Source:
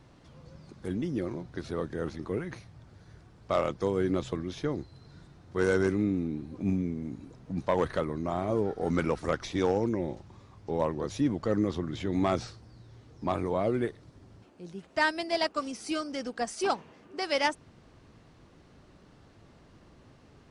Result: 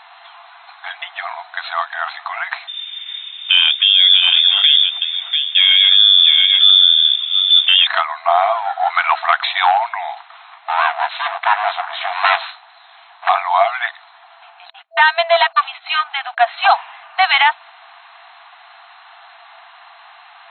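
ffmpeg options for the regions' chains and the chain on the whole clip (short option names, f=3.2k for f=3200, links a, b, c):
-filter_complex "[0:a]asettb=1/sr,asplit=3[a][b][c];[a]atrim=end=2.674[d];[b]atrim=start=2.67:end=7.87,asetpts=PTS-STARTPTS,afade=t=in:d=0.004:c=qsin,afade=t=out:st=5.196:d=0.004:c=qsin,lowpass=f=3.1k:t=q:w=0.5098,lowpass=f=3.1k:t=q:w=0.6013,lowpass=f=3.1k:t=q:w=0.9,lowpass=f=3.1k:t=q:w=2.563,afreqshift=-3700,aecho=1:1:691:0.282,atrim=end_sample=229320[e];[c]atrim=start=7.866[f];[d][e]acrossfade=d=0.004:c1=hsin:c2=qsin[g];[g][f]acrossfade=d=0.004:c1=qsin:c2=hsin,asettb=1/sr,asplit=3[h][i][j];[h]atrim=end=10.204[k];[i]atrim=start=10.2:end=13.29,asetpts=PTS-STARTPTS,afade=t=in:d=0.004:c=qsin,afade=t=out:st=3.086:d=0.004:c=qsin,aeval=exprs='abs(val(0))':c=same,lowshelf=f=340:g=-10.5,asplit=2[l][m];[m]adelay=18,volume=-12dB[n];[l][n]amix=inputs=2:normalize=0,atrim=end_sample=136269[o];[j]atrim=start=13.286[p];[k][o]acrossfade=d=0.004:c1=hsin:c2=qsin[q];[q][p]acrossfade=d=0.004:c1=qsin:c2=hsin,asettb=1/sr,asplit=3[r][s][t];[r]atrim=end=14.704[u];[s]atrim=start=14.7:end=16.5,asetpts=PTS-STARTPTS,afade=t=in:d=0.004:c=qsin,afade=t=out:st=1.796:d=0.004:c=qsin,agate=range=-33dB:threshold=-45dB:ratio=16:release=100:detection=peak,aeval=exprs='(tanh(15.8*val(0)+0.45)-tanh(0.45))/15.8':c=same,lowpass=8.3k[v];[t]atrim=start=16.496[w];[u][v]acrossfade=d=0.004:c1=hsin:c2=qsin[x];[x][w]acrossfade=d=0.004:c1=qsin:c2=hsin,afftfilt=real='re*between(b*sr/4096,660,4200)':imag='im*between(b*sr/4096,660,4200)':win_size=4096:overlap=0.75,alimiter=level_in=24dB:limit=-1dB:release=50:level=0:latency=1,volume=-1dB"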